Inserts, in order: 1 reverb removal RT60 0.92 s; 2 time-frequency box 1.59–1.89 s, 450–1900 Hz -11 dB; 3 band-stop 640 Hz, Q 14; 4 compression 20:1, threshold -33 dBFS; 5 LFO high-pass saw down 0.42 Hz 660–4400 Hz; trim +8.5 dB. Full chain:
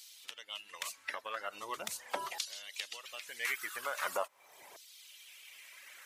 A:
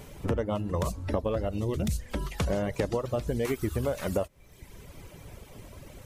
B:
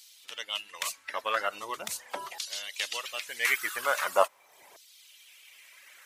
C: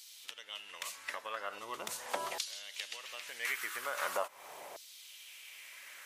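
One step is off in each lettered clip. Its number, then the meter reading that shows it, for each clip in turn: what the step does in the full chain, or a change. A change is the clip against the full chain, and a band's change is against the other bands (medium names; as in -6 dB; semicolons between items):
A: 5, 250 Hz band +29.0 dB; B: 4, mean gain reduction 5.0 dB; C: 1, momentary loudness spread change -3 LU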